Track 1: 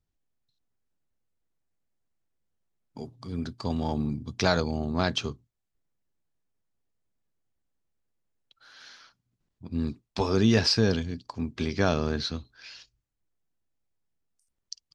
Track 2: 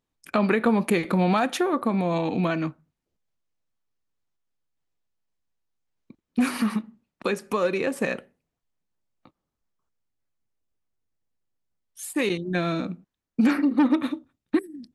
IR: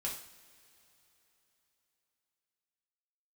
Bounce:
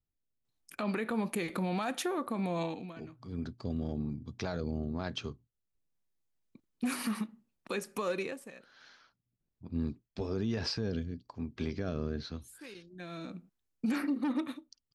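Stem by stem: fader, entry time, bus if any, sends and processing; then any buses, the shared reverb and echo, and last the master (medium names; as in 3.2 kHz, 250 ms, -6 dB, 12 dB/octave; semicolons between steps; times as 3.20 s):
-4.0 dB, 0.00 s, no send, treble shelf 2.8 kHz -9.5 dB; rotary cabinet horn 1.1 Hz
-9.0 dB, 0.45 s, no send, treble shelf 4.3 kHz +8 dB; auto duck -16 dB, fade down 0.30 s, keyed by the first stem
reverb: none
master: peak limiter -24 dBFS, peak gain reduction 9 dB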